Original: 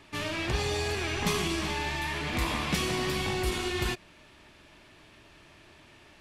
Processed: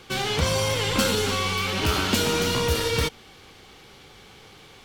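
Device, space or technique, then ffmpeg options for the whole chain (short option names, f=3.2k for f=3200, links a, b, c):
nightcore: -af "asetrate=56448,aresample=44100,volume=6.5dB"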